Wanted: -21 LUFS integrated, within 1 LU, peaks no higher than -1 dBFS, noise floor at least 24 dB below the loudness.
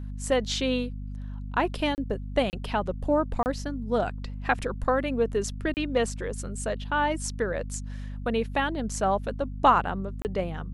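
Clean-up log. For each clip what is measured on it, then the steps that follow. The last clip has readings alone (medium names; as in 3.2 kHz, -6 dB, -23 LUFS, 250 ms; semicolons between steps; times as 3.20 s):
dropouts 5; longest dropout 29 ms; hum 50 Hz; highest harmonic 250 Hz; hum level -33 dBFS; loudness -28.0 LUFS; peak level -7.5 dBFS; loudness target -21.0 LUFS
-> interpolate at 1.95/2.50/3.43/5.74/10.22 s, 29 ms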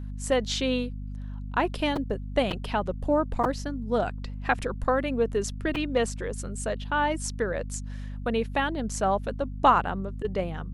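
dropouts 0; hum 50 Hz; highest harmonic 250 Hz; hum level -33 dBFS
-> hum notches 50/100/150/200/250 Hz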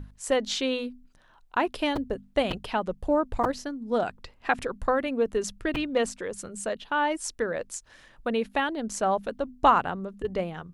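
hum not found; loudness -28.5 LUFS; peak level -7.0 dBFS; loudness target -21.0 LUFS
-> trim +7.5 dB; peak limiter -1 dBFS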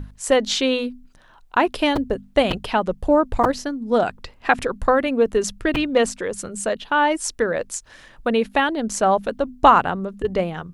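loudness -21.0 LUFS; peak level -1.0 dBFS; noise floor -51 dBFS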